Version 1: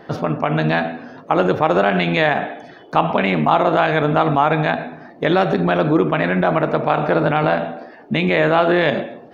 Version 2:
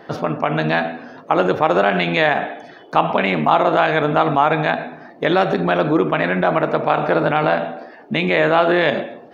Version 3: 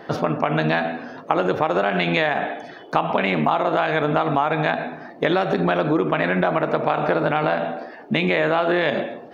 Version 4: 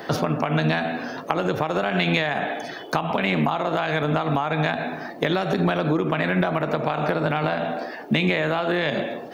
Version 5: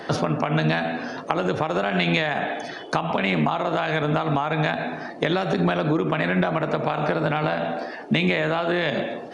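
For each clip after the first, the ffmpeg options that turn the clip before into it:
ffmpeg -i in.wav -af "lowshelf=frequency=190:gain=-7.5,volume=1dB" out.wav
ffmpeg -i in.wav -af "acompressor=threshold=-17dB:ratio=6,volume=1.5dB" out.wav
ffmpeg -i in.wav -filter_complex "[0:a]acrossover=split=190[link_01][link_02];[link_02]acompressor=threshold=-27dB:ratio=3[link_03];[link_01][link_03]amix=inputs=2:normalize=0,crystalizer=i=2.5:c=0,volume=3.5dB" out.wav
ffmpeg -i in.wav -af "aresample=22050,aresample=44100" out.wav

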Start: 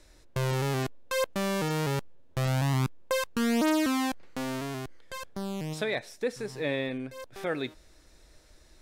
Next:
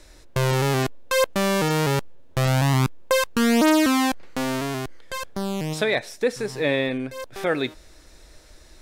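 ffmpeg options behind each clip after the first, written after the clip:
ffmpeg -i in.wav -af "equalizer=frequency=140:width=0.61:gain=-2,volume=8.5dB" out.wav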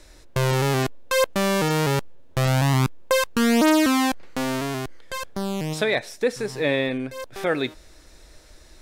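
ffmpeg -i in.wav -af anull out.wav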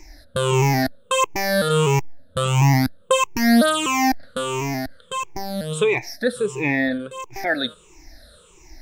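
ffmpeg -i in.wav -af "afftfilt=real='re*pow(10,24/40*sin(2*PI*(0.72*log(max(b,1)*sr/1024/100)/log(2)-(-1.5)*(pts-256)/sr)))':imag='im*pow(10,24/40*sin(2*PI*(0.72*log(max(b,1)*sr/1024/100)/log(2)-(-1.5)*(pts-256)/sr)))':win_size=1024:overlap=0.75,volume=-3.5dB" out.wav

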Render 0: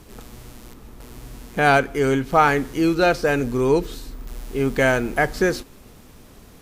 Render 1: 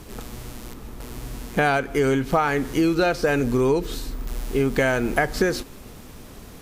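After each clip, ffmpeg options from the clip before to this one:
ffmpeg -i in.wav -af "acompressor=threshold=-21dB:ratio=10,volume=4.5dB" out.wav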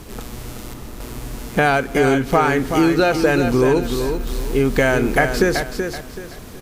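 ffmpeg -i in.wav -af "aecho=1:1:379|758|1137|1516:0.447|0.138|0.0429|0.0133,volume=4dB" out.wav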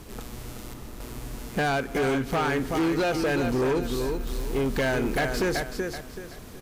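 ffmpeg -i in.wav -af "asoftclip=type=hard:threshold=-14.5dB,volume=-6.5dB" out.wav

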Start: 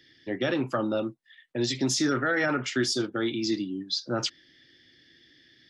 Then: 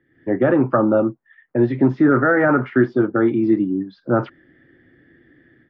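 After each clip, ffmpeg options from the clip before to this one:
ffmpeg -i in.wav -af "lowpass=frequency=1500:width=0.5412,lowpass=frequency=1500:width=1.3066,dynaudnorm=framelen=110:gausssize=3:maxgain=12dB" out.wav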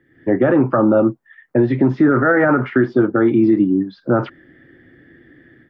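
ffmpeg -i in.wav -af "alimiter=limit=-11dB:level=0:latency=1:release=85,volume=5.5dB" out.wav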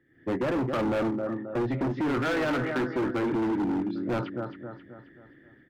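ffmpeg -i in.wav -af "aecho=1:1:267|534|801|1068|1335:0.355|0.16|0.0718|0.0323|0.0145,volume=16dB,asoftclip=hard,volume=-16dB,volume=-8.5dB" out.wav

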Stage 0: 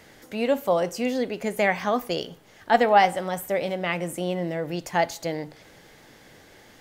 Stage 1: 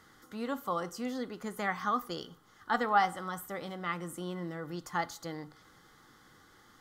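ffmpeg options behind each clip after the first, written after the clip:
ffmpeg -i in.wav -af "superequalizer=7b=0.631:8b=0.355:10b=3.16:12b=0.355,volume=-9dB" out.wav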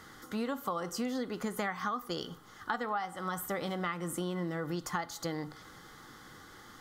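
ffmpeg -i in.wav -af "acompressor=threshold=-38dB:ratio=16,volume=7.5dB" out.wav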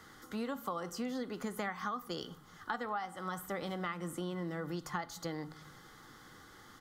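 ffmpeg -i in.wav -filter_complex "[0:a]acrossover=split=170|5100[link_01][link_02][link_03];[link_01]aecho=1:1:229:0.501[link_04];[link_03]alimiter=level_in=12dB:limit=-24dB:level=0:latency=1:release=291,volume=-12dB[link_05];[link_04][link_02][link_05]amix=inputs=3:normalize=0,volume=-3.5dB" out.wav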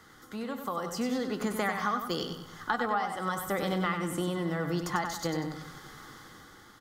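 ffmpeg -i in.wav -af "dynaudnorm=framelen=230:gausssize=7:maxgain=7.5dB,aecho=1:1:96|192|288|384|480:0.447|0.179|0.0715|0.0286|0.0114" out.wav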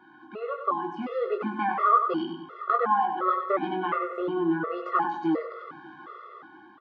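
ffmpeg -i in.wav -filter_complex "[0:a]highpass=330,equalizer=frequency=340:width_type=q:width=4:gain=9,equalizer=frequency=1200:width_type=q:width=4:gain=7,equalizer=frequency=1900:width_type=q:width=4:gain=-9,lowpass=frequency=2400:width=0.5412,lowpass=frequency=2400:width=1.3066,asplit=2[link_01][link_02];[link_02]adelay=19,volume=-5dB[link_03];[link_01][link_03]amix=inputs=2:normalize=0,afftfilt=real='re*gt(sin(2*PI*1.4*pts/sr)*(1-2*mod(floor(b*sr/1024/360),2)),0)':imag='im*gt(sin(2*PI*1.4*pts/sr)*(1-2*mod(floor(b*sr/1024/360),2)),0)':win_size=1024:overlap=0.75,volume=6dB" out.wav

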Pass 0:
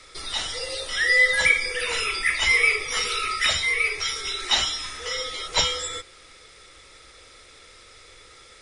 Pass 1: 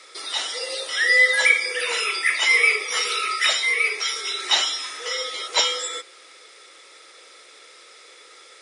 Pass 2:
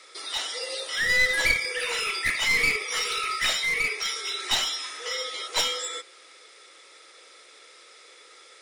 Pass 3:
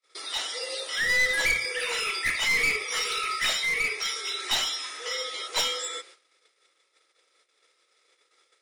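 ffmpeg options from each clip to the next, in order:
ffmpeg -i in.wav -af "highpass=frequency=330:width=0.5412,highpass=frequency=330:width=1.3066,volume=2dB" out.wav
ffmpeg -i in.wav -af "aeval=exprs='clip(val(0),-1,0.0944)':channel_layout=same,volume=-3.5dB" out.wav
ffmpeg -i in.wav -af "bandreject=frequency=60:width_type=h:width=6,bandreject=frequency=120:width_type=h:width=6,aeval=exprs='0.398*sin(PI/2*1.41*val(0)/0.398)':channel_layout=same,agate=range=-37dB:threshold=-41dB:ratio=16:detection=peak,volume=-7.5dB" out.wav

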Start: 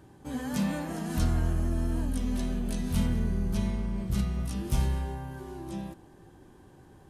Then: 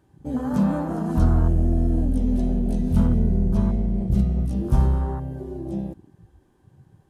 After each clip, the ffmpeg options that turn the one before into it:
ffmpeg -i in.wav -af "afwtdn=0.0126,volume=8.5dB" out.wav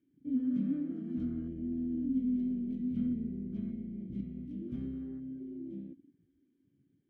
ffmpeg -i in.wav -filter_complex "[0:a]asplit=3[link_01][link_02][link_03];[link_01]bandpass=frequency=270:width_type=q:width=8,volume=0dB[link_04];[link_02]bandpass=frequency=2290:width_type=q:width=8,volume=-6dB[link_05];[link_03]bandpass=frequency=3010:width_type=q:width=8,volume=-9dB[link_06];[link_04][link_05][link_06]amix=inputs=3:normalize=0,highshelf=frequency=2400:gain=-9.5,volume=-1.5dB" out.wav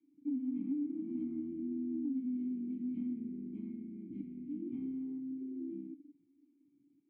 ffmpeg -i in.wav -filter_complex "[0:a]asplit=3[link_01][link_02][link_03];[link_01]bandpass=frequency=300:width_type=q:width=8,volume=0dB[link_04];[link_02]bandpass=frequency=870:width_type=q:width=8,volume=-6dB[link_05];[link_03]bandpass=frequency=2240:width_type=q:width=8,volume=-9dB[link_06];[link_04][link_05][link_06]amix=inputs=3:normalize=0,acrossover=split=180|370[link_07][link_08][link_09];[link_07]acompressor=threshold=-59dB:ratio=4[link_10];[link_08]acompressor=threshold=-47dB:ratio=4[link_11];[link_09]acompressor=threshold=-54dB:ratio=4[link_12];[link_10][link_11][link_12]amix=inputs=3:normalize=0,volume=8.5dB" out.wav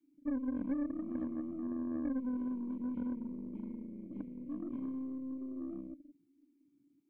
ffmpeg -i in.wav -af "aeval=exprs='0.0422*(cos(1*acos(clip(val(0)/0.0422,-1,1)))-cos(1*PI/2))+0.0075*(cos(2*acos(clip(val(0)/0.0422,-1,1)))-cos(2*PI/2))+0.00211*(cos(3*acos(clip(val(0)/0.0422,-1,1)))-cos(3*PI/2))+0.00211*(cos(8*acos(clip(val(0)/0.0422,-1,1)))-cos(8*PI/2))':channel_layout=same,volume=1dB" out.wav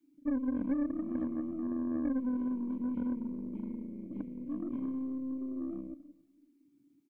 ffmpeg -i in.wav -af "aecho=1:1:271|542:0.0668|0.0167,volume=3.5dB" out.wav

